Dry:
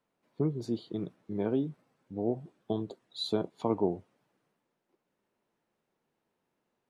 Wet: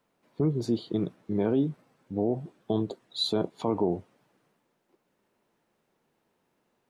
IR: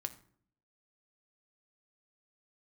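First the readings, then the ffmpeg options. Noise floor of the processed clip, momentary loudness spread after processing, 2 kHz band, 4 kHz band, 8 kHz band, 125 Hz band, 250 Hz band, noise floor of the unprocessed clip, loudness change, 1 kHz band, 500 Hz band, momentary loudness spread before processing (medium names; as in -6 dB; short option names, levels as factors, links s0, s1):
-75 dBFS, 9 LU, +4.0 dB, +7.0 dB, no reading, +5.0 dB, +4.5 dB, -82 dBFS, +4.5 dB, +3.0 dB, +3.5 dB, 9 LU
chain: -af "alimiter=limit=0.0668:level=0:latency=1:release=32,volume=2.24"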